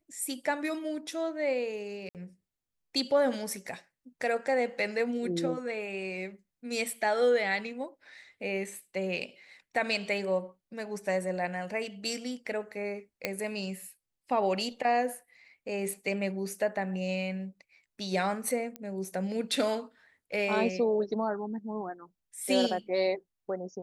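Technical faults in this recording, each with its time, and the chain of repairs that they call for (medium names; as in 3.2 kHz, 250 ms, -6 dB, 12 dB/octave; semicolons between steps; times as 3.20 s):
2.09–2.15 s: dropout 58 ms
13.25 s: pop -15 dBFS
18.76 s: pop -23 dBFS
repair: de-click; interpolate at 2.09 s, 58 ms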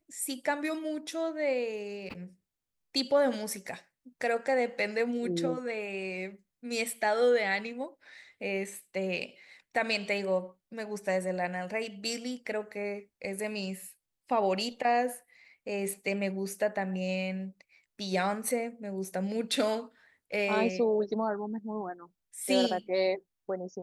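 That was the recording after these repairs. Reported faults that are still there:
nothing left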